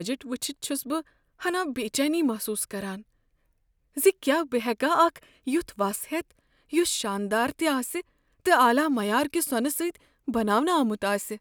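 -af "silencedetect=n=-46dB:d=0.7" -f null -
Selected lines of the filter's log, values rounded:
silence_start: 3.02
silence_end: 3.96 | silence_duration: 0.95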